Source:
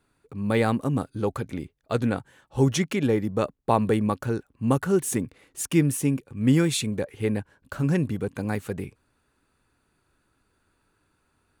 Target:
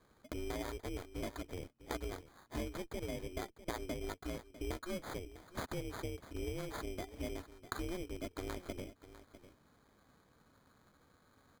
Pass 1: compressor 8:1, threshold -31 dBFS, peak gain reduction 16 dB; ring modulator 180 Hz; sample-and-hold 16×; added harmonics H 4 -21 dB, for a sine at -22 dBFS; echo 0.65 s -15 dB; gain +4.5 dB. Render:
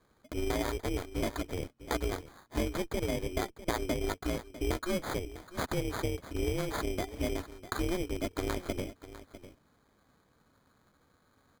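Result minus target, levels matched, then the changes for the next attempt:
compressor: peak gain reduction -8.5 dB
change: compressor 8:1, threshold -41 dBFS, peak gain reduction 25 dB

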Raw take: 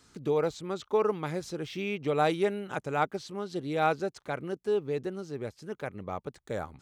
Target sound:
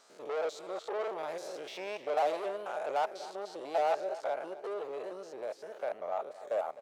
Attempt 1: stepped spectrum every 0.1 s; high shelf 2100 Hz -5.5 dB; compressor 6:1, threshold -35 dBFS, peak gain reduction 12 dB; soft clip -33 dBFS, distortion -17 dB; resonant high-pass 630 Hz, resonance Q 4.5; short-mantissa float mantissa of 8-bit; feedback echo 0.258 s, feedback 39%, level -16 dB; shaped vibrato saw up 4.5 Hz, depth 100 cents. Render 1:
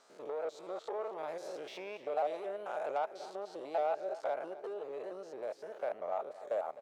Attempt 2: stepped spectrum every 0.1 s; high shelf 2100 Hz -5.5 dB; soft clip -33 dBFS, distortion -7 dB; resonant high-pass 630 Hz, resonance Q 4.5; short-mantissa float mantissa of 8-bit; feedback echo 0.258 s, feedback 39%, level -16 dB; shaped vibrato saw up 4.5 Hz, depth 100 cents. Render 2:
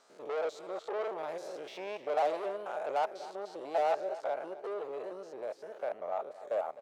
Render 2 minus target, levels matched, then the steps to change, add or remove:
4000 Hz band -2.5 dB
remove: high shelf 2100 Hz -5.5 dB

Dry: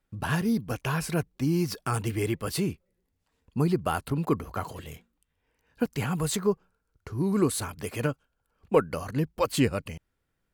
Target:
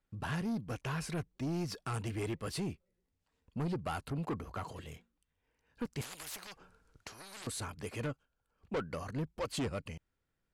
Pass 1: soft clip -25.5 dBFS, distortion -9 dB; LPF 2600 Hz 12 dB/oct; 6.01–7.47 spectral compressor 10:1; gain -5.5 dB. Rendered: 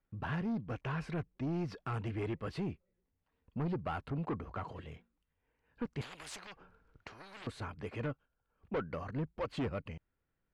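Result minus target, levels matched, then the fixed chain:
8000 Hz band -11.5 dB
soft clip -25.5 dBFS, distortion -9 dB; LPF 9100 Hz 12 dB/oct; 6.01–7.47 spectral compressor 10:1; gain -5.5 dB

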